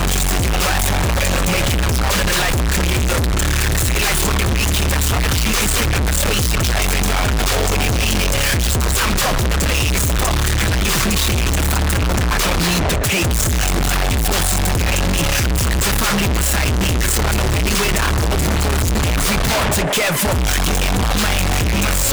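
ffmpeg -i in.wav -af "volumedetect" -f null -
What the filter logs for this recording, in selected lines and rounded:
mean_volume: -16.0 dB
max_volume: -15.7 dB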